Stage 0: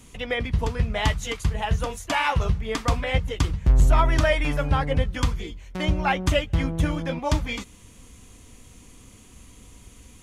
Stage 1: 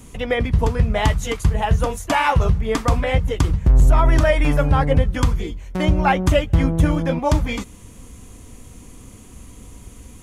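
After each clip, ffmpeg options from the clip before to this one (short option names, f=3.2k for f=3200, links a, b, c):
-af "equalizer=f=3.5k:w=0.5:g=-7,alimiter=limit=-14dB:level=0:latency=1:release=80,volume=8dB"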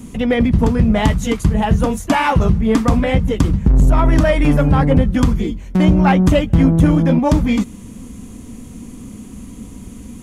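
-filter_complex "[0:a]equalizer=f=220:w=1.5:g=13.5,asplit=2[a][b];[b]acontrast=89,volume=-1dB[c];[a][c]amix=inputs=2:normalize=0,volume=-7.5dB"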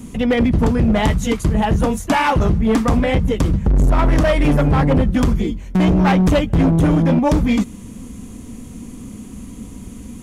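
-af "asoftclip=type=hard:threshold=-10.5dB"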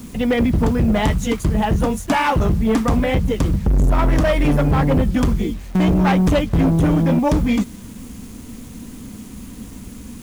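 -af "acrusher=bits=6:mix=0:aa=0.000001,volume=-1.5dB"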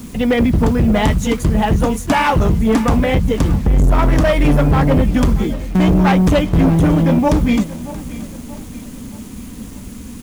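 -af "aecho=1:1:628|1256|1884|2512:0.15|0.0673|0.0303|0.0136,volume=3dB"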